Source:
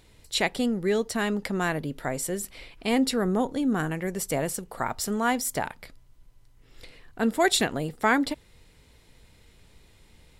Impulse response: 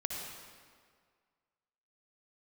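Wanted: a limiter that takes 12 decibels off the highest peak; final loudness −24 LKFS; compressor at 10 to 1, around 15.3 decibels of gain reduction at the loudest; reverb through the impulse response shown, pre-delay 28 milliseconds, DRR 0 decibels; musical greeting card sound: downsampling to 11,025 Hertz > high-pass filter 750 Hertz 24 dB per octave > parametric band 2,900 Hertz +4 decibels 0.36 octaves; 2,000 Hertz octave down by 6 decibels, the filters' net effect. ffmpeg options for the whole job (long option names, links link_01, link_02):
-filter_complex "[0:a]equalizer=frequency=2000:width_type=o:gain=-8.5,acompressor=threshold=-35dB:ratio=10,alimiter=level_in=11dB:limit=-24dB:level=0:latency=1,volume=-11dB,asplit=2[link_01][link_02];[1:a]atrim=start_sample=2205,adelay=28[link_03];[link_02][link_03]afir=irnorm=-1:irlink=0,volume=-2.5dB[link_04];[link_01][link_04]amix=inputs=2:normalize=0,aresample=11025,aresample=44100,highpass=frequency=750:width=0.5412,highpass=frequency=750:width=1.3066,equalizer=frequency=2900:width_type=o:width=0.36:gain=4,volume=26dB"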